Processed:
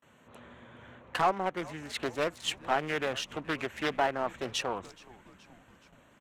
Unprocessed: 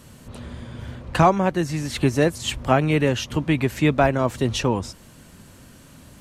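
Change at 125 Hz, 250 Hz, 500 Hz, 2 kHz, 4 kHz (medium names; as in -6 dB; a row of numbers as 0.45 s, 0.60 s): -22.5 dB, -17.0 dB, -11.0 dB, -6.5 dB, -6.0 dB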